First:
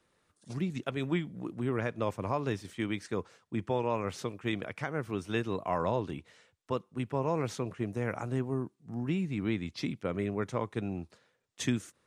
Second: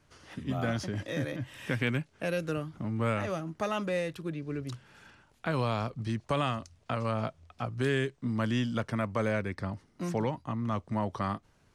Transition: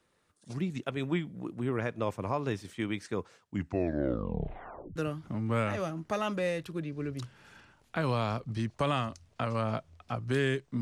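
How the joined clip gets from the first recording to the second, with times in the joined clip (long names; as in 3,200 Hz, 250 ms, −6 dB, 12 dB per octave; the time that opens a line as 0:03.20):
first
0:03.38: tape stop 1.58 s
0:04.96: continue with second from 0:02.46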